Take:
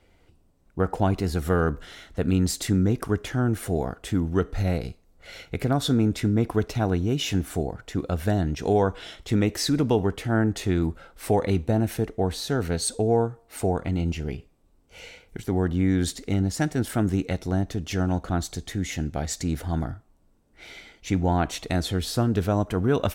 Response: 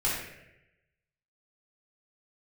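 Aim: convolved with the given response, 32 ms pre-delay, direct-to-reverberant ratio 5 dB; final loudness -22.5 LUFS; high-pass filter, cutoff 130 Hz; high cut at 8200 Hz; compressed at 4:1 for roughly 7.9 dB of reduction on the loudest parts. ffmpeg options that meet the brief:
-filter_complex "[0:a]highpass=130,lowpass=8.2k,acompressor=threshold=-27dB:ratio=4,asplit=2[a][b];[1:a]atrim=start_sample=2205,adelay=32[c];[b][c]afir=irnorm=-1:irlink=0,volume=-14.5dB[d];[a][d]amix=inputs=2:normalize=0,volume=9dB"

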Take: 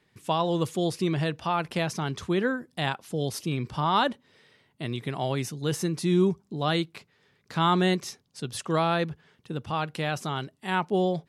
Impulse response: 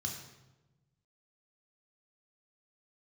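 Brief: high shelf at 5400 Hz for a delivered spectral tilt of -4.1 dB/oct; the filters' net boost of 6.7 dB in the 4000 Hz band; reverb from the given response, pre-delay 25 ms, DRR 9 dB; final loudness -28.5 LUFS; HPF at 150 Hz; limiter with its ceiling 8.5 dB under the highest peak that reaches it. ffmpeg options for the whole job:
-filter_complex "[0:a]highpass=150,equalizer=f=4k:t=o:g=5,highshelf=f=5.4k:g=9,alimiter=limit=-17.5dB:level=0:latency=1,asplit=2[a][b];[1:a]atrim=start_sample=2205,adelay=25[c];[b][c]afir=irnorm=-1:irlink=0,volume=-9.5dB[d];[a][d]amix=inputs=2:normalize=0,volume=0.5dB"

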